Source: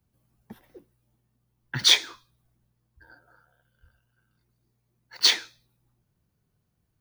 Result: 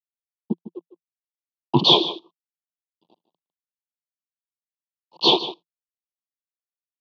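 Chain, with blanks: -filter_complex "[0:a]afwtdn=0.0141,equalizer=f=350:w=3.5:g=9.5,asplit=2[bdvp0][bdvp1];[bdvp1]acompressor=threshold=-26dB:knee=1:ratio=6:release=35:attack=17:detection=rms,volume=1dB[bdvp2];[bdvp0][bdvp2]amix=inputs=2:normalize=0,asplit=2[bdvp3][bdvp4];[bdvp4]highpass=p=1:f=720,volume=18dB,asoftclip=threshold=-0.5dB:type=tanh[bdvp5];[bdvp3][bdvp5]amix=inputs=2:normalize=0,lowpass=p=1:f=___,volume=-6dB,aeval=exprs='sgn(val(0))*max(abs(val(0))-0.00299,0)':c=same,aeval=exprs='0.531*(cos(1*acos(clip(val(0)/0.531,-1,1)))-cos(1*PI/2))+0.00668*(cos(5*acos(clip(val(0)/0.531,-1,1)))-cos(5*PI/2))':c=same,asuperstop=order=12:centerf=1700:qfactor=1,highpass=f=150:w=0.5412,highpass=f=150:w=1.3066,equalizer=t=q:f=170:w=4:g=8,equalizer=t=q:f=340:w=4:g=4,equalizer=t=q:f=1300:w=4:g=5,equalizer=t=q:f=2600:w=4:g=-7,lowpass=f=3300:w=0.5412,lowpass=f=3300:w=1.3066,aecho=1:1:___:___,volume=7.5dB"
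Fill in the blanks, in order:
1600, 153, 0.2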